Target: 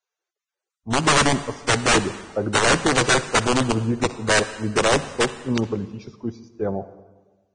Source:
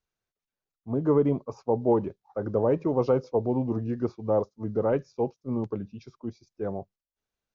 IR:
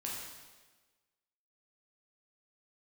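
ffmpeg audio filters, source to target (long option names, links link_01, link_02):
-filter_complex "[0:a]aeval=exprs='(mod(7.94*val(0)+1,2)-1)/7.94':channel_layout=same,dynaudnorm=framelen=110:gausssize=11:maxgain=3.5dB,asplit=2[link_01][link_02];[1:a]atrim=start_sample=2205,adelay=61[link_03];[link_02][link_03]afir=irnorm=-1:irlink=0,volume=-14.5dB[link_04];[link_01][link_04]amix=inputs=2:normalize=0,volume=3dB" -ar 22050 -c:a libvorbis -b:a 16k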